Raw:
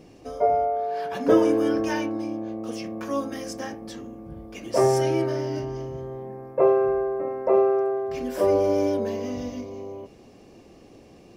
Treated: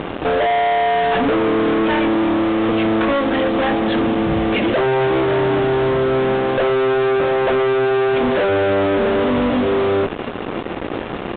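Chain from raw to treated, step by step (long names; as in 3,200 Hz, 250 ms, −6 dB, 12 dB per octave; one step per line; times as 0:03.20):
high-pass filter 820 Hz 6 dB per octave
spectral tilt −3 dB per octave
downward compressor 6 to 1, threshold −38 dBFS, peak gain reduction 20 dB
fuzz pedal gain 51 dB, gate −54 dBFS
downsampling to 8,000 Hz
level −1.5 dB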